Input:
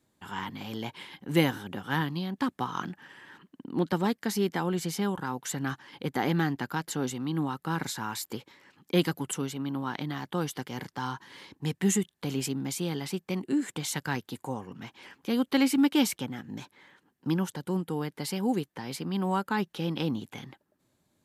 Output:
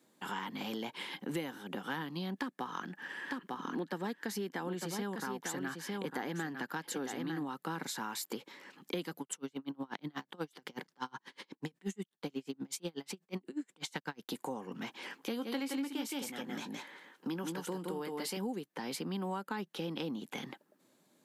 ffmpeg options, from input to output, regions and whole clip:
-filter_complex "[0:a]asettb=1/sr,asplit=3[s0][s1][s2];[s0]atrim=end=2.354[s3];[s1]atrim=start=2.35:end=7.47,asetpts=PTS-STARTPTS,afade=t=in:d=0.004:c=qsin,afade=t=out:st=5.116:d=0.004:c=qsin,equalizer=f=1700:w=7:g=6.5,aecho=1:1:901:0.398,atrim=end_sample=225792[s4];[s2]atrim=start=7.466[s5];[s3][s4]acrossfade=d=0.004:c1=hsin:c2=qsin[s6];[s6][s5]acrossfade=d=0.004:c1=qsin:c2=hsin,asettb=1/sr,asplit=3[s7][s8][s9];[s7]atrim=end=9.214[s10];[s8]atrim=start=9.21:end=14.29,asetpts=PTS-STARTPTS,afade=t=in:d=0.004:c=qsin,afade=t=out:st=5.076:d=0.004:c=qsin,equalizer=f=12000:t=o:w=0.54:g=-6,aeval=exprs='val(0)*pow(10,-36*(0.5-0.5*cos(2*PI*8.2*n/s))/20)':c=same[s11];[s9]atrim=start=14.286[s12];[s10][s11]acrossfade=d=0.004:c1=hsin:c2=qsin[s13];[s13][s12]acrossfade=d=0.004:c1=qsin:c2=hsin,asettb=1/sr,asplit=3[s14][s15][s16];[s14]atrim=end=15.164[s17];[s15]atrim=start=15.16:end=18.37,asetpts=PTS-STARTPTS,afade=t=in:d=0.004:c=qsin,afade=t=out:st=3.206:d=0.004:c=qsin,lowshelf=f=150:g=-11,asplit=2[s18][s19];[s19]adelay=18,volume=0.251[s20];[s18][s20]amix=inputs=2:normalize=0,atrim=end_sample=141561,aecho=1:1:169:0.631,atrim=end_sample=141561[s21];[s16]atrim=start=18.366[s22];[s17][s21]acrossfade=d=0.004:c1=hsin:c2=qsin[s23];[s23][s22]acrossfade=d=0.004:c1=qsin:c2=hsin,highpass=f=180:w=0.5412,highpass=f=180:w=1.3066,equalizer=f=490:w=4.1:g=2.5,acompressor=threshold=0.01:ratio=6,volume=1.58"

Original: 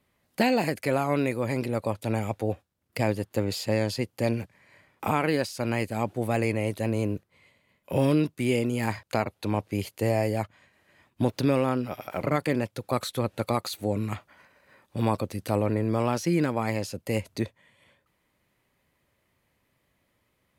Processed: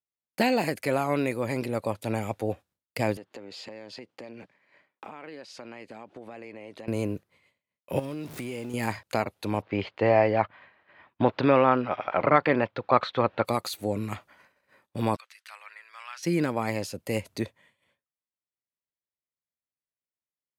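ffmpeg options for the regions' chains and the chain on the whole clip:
-filter_complex "[0:a]asettb=1/sr,asplit=3[s0][s1][s2];[s0]atrim=end=3.174[s3];[s1]atrim=start=3.17:end=6.88,asetpts=PTS-STARTPTS,afade=t=in:d=0.004:c=qsin,afade=t=out:st=3.706:d=0.004:c=qsin,highpass=210,lowpass=4200,acompressor=threshold=0.0141:ratio=12:attack=3.2:release=140:knee=1:detection=peak[s4];[s2]atrim=start=6.876[s5];[s3][s4]acrossfade=d=0.004:c1=hsin:c2=qsin[s6];[s6][s5]acrossfade=d=0.004:c1=qsin:c2=hsin,asettb=1/sr,asplit=3[s7][s8][s9];[s7]atrim=end=7.994[s10];[s8]atrim=start=7.99:end=8.74,asetpts=PTS-STARTPTS,afade=t=in:d=0.004:c=qsin,afade=t=out:st=0.746:d=0.004:c=qsin,aeval=exprs='val(0)+0.5*0.0178*sgn(val(0))':c=same,highpass=42,acompressor=threshold=0.0355:ratio=16:attack=3.2:release=140:knee=1:detection=peak[s11];[s9]atrim=start=8.736[s12];[s10][s11]acrossfade=d=0.004:c1=hsin:c2=qsin[s13];[s13][s12]acrossfade=d=0.004:c1=qsin:c2=hsin,asettb=1/sr,asplit=3[s14][s15][s16];[s14]atrim=end=9.624[s17];[s15]atrim=start=9.62:end=13.45,asetpts=PTS-STARTPTS,afade=t=in:d=0.004:c=qsin,afade=t=out:st=3.826:d=0.004:c=qsin,lowpass=f=3900:w=0.5412,lowpass=f=3900:w=1.3066,equalizer=f=1100:w=0.59:g=10[s18];[s16]atrim=start=13.446[s19];[s17][s18]acrossfade=d=0.004:c1=hsin:c2=qsin[s20];[s20][s19]acrossfade=d=0.004:c1=qsin:c2=hsin,asettb=1/sr,asplit=3[s21][s22][s23];[s21]atrim=end=15.164[s24];[s22]atrim=start=15.16:end=16.23,asetpts=PTS-STARTPTS,afade=t=in:d=0.004:c=qsin,afade=t=out:st=1.066:d=0.004:c=qsin,highpass=f=1500:w=0.5412,highpass=f=1500:w=1.3066,aemphasis=mode=reproduction:type=75fm[s25];[s23]atrim=start=16.226[s26];[s24][s25]acrossfade=d=0.004:c1=hsin:c2=qsin[s27];[s27][s26]acrossfade=d=0.004:c1=qsin:c2=hsin,lowshelf=f=140:g=-6,agate=range=0.0224:threshold=0.00224:ratio=3:detection=peak"

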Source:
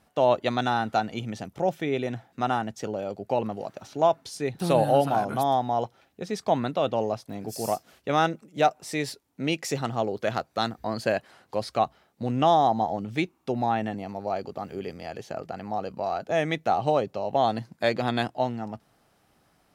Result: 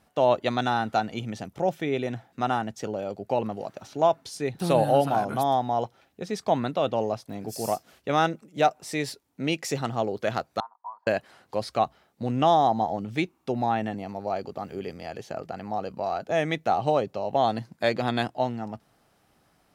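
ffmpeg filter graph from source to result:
-filter_complex "[0:a]asettb=1/sr,asplit=3[s0][s1][s2];[s0]atrim=end=10.604[s3];[s1]atrim=start=10.6:end=11.07,asetpts=PTS-STARTPTS,afade=t=in:d=0.004:c=qsin,afade=t=out:st=0.466:d=0.004:c=qsin,asuperpass=centerf=980:order=4:qfactor=5,aecho=1:1:4.2:0.33,atrim=end_sample=20727[s4];[s2]atrim=start=11.066[s5];[s3][s4]acrossfade=d=0.004:c1=hsin:c2=qsin[s6];[s6][s5]acrossfade=d=0.004:c1=qsin:c2=hsin"

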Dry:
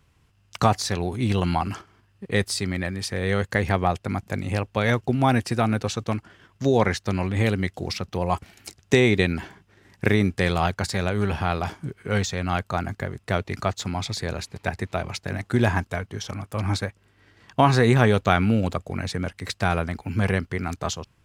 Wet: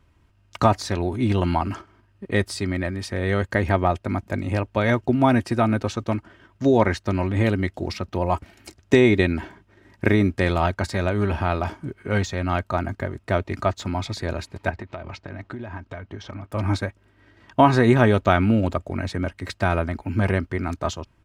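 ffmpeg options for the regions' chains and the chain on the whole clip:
-filter_complex "[0:a]asettb=1/sr,asplit=3[s0][s1][s2];[s0]atrim=end=14.704[s3];[s1]atrim=start=14.7:end=16.52,asetpts=PTS-STARTPTS,afade=t=in:d=0.004:c=qsin,afade=t=out:st=1.816:d=0.004:c=qsin,lowpass=4500,acompressor=threshold=0.0282:ratio=12:attack=3.2:release=140:knee=1:detection=peak[s4];[s2]atrim=start=16.516[s5];[s3][s4]acrossfade=d=0.004:c1=hsin:c2=qsin[s6];[s6][s5]acrossfade=d=0.004:c1=qsin:c2=hsin,highshelf=f=2700:g=-10,aecho=1:1:3.2:0.44,volume=1.33"

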